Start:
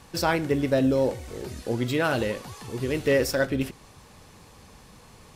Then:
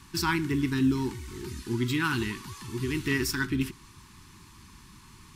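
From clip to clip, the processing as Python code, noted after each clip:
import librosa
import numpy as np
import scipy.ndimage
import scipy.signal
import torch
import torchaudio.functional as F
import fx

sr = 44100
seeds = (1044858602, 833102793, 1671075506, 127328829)

y = scipy.signal.sosfilt(scipy.signal.ellip(3, 1.0, 50, [370.0, 940.0], 'bandstop', fs=sr, output='sos'), x)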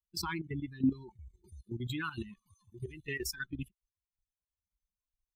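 y = fx.bin_expand(x, sr, power=3.0)
y = fx.level_steps(y, sr, step_db=12)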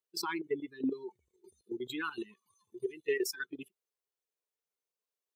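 y = fx.highpass_res(x, sr, hz=430.0, q=4.9)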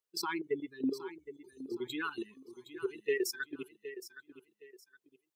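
y = fx.echo_feedback(x, sr, ms=766, feedback_pct=28, wet_db=-13)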